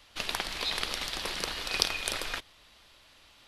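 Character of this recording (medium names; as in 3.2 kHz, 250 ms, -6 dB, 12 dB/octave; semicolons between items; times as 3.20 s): noise floor -59 dBFS; spectral tilt -2.0 dB/octave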